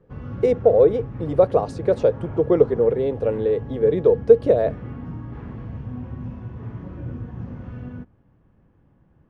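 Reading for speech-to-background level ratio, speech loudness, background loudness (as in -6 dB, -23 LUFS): 15.0 dB, -19.5 LUFS, -34.5 LUFS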